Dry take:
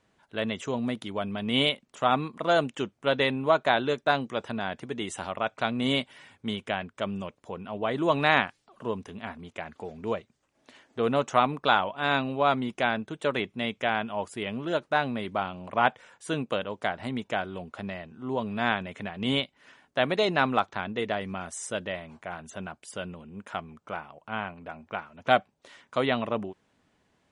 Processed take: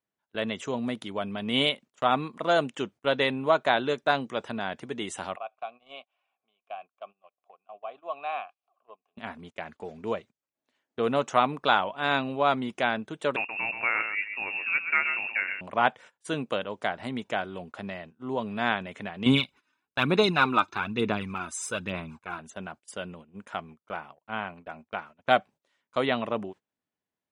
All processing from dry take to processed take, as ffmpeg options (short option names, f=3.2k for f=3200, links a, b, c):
-filter_complex "[0:a]asettb=1/sr,asplit=3[a][b][c];[a]atrim=end=5.364[d];[b]atrim=start=5.36:end=9.17,asetpts=PTS-STARTPTS,afade=t=in:d=0.004:c=qsin,afade=t=out:st=3.806:d=0.004:c=qsin,acompressor=mode=upward:threshold=-28dB:ratio=2.5:attack=3.2:release=140:knee=2.83:detection=peak,asplit=3[e][f][g];[e]bandpass=f=730:t=q:w=8,volume=0dB[h];[f]bandpass=f=1.09k:t=q:w=8,volume=-6dB[i];[g]bandpass=f=2.44k:t=q:w=8,volume=-9dB[j];[h][i][j]amix=inputs=3:normalize=0,lowshelf=f=490:g=-7.5[k];[c]atrim=start=9.166[l];[d][k]acrossfade=d=0.004:c1=hsin:c2=qsin[m];[m][l]acrossfade=d=0.004:c1=qsin:c2=hsin,asettb=1/sr,asplit=3[n][o][p];[n]atrim=end=13.364[q];[o]atrim=start=13.36:end=15.61,asetpts=PTS-STARTPTS,afade=t=in:d=0.004:c=qsin,afade=t=out:st=2.246:d=0.004:c=qsin,aecho=1:1:127:0.422,atrim=end_sample=99225,lowpass=f=2.5k:t=q:w=0.5098,lowpass=f=2.5k:t=q:w=0.6013,lowpass=f=2.5k:t=q:w=0.9,lowpass=f=2.5k:t=q:w=2.563,afreqshift=-2900[r];[p]atrim=start=15.606[s];[q][r]acrossfade=d=0.004:c1=hsin:c2=qsin[t];[t][s]acrossfade=d=0.004:c1=qsin:c2=hsin,asettb=1/sr,asplit=3[u][v][w];[u]atrim=end=19.264[x];[v]atrim=start=19.26:end=22.39,asetpts=PTS-STARTPTS,afade=t=in:d=0.004:c=qsin,afade=t=out:st=3.126:d=0.004:c=qsin,aecho=1:1:0.8:0.61,atrim=end_sample=138033,aphaser=in_gain=1:out_gain=1:delay=3.3:decay=0.54:speed=1.1:type=sinusoidal[y];[w]atrim=start=22.386[z];[x][y]acrossfade=d=0.004:c1=hsin:c2=qsin[aa];[aa][z]acrossfade=d=0.004:c1=qsin:c2=hsin,highpass=f=130:p=1,agate=range=-22dB:threshold=-45dB:ratio=16:detection=peak"